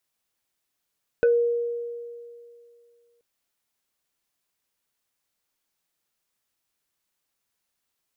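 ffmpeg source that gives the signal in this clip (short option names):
-f lavfi -i "aevalsrc='0.188*pow(10,-3*t/2.41)*sin(2*PI*473*t+0.67*pow(10,-3*t/0.18)*sin(2*PI*2.15*473*t))':d=1.98:s=44100"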